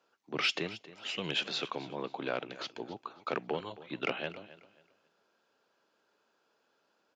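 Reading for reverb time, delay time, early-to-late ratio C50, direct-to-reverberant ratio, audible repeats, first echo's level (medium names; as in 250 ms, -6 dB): no reverb, 270 ms, no reverb, no reverb, 2, -17.0 dB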